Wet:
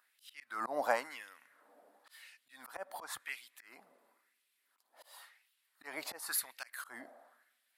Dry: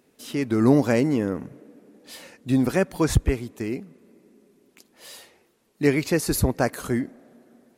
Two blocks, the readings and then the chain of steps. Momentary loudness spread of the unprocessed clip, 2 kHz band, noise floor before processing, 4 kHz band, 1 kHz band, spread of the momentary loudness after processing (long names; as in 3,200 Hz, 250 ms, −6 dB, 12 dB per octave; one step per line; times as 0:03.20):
20 LU, −10.0 dB, −65 dBFS, −11.0 dB, −7.5 dB, 21 LU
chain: auto-filter high-pass sine 0.95 Hz 660–2,700 Hz
volume swells 227 ms
graphic EQ with 15 bands 160 Hz −7 dB, 400 Hz −10 dB, 2,500 Hz −8 dB, 6,300 Hz −10 dB
level −4 dB